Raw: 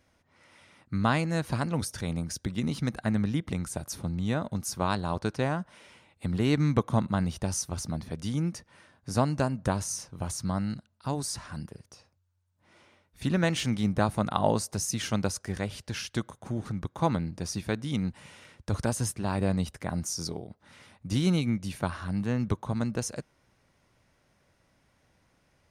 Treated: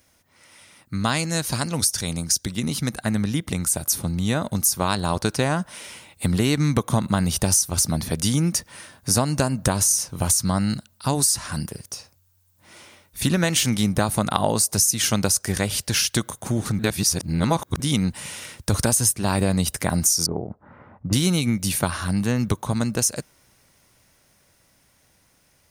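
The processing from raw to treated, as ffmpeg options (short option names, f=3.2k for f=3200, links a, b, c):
-filter_complex "[0:a]asettb=1/sr,asplit=3[a][b][c];[a]atrim=end=1.044[d];[b]atrim=start=1.04:end=2.53,asetpts=PTS-STARTPTS,afade=t=in:d=0.004:c=qsin,afade=t=out:st=1.486:d=0.004:c=qsin,equalizer=f=5.7k:t=o:w=1.4:g=6.5[e];[c]atrim=start=2.526[f];[d][e]acrossfade=d=0.004:c1=hsin:c2=qsin[g];[g][f]acrossfade=d=0.004:c1=qsin:c2=hsin,asettb=1/sr,asplit=3[h][i][j];[h]atrim=end=20.264[k];[i]atrim=start=20.26:end=21.13,asetpts=PTS-STARTPTS,afade=t=in:d=0.004:c=qsin,afade=t=out:st=0.866:d=0.004:c=qsin,lowpass=f=1.3k:w=0.5412,lowpass=f=1.3k:w=1.3066[l];[j]atrim=start=21.126[m];[k][l]acrossfade=d=0.004:c1=hsin:c2=qsin[n];[n][m]acrossfade=d=0.004:c1=qsin:c2=hsin,asplit=3[o][p][q];[o]atrim=end=16.792[r];[p]atrim=start=16.788:end=17.802,asetpts=PTS-STARTPTS,areverse[s];[q]atrim=start=17.798[t];[r][s]acrossfade=d=0.004:c1=hsin:c2=hsin[u];[u][t]acrossfade=d=0.004:c1=hsin:c2=hsin,dynaudnorm=f=570:g=17:m=11.5dB,aemphasis=mode=production:type=75fm,acompressor=threshold=-20dB:ratio=6,volume=3.5dB"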